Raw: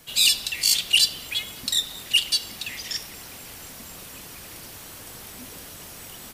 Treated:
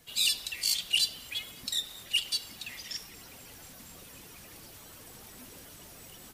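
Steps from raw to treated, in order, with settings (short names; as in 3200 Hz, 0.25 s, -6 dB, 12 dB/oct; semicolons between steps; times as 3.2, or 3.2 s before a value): bin magnitudes rounded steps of 15 dB; gain -8 dB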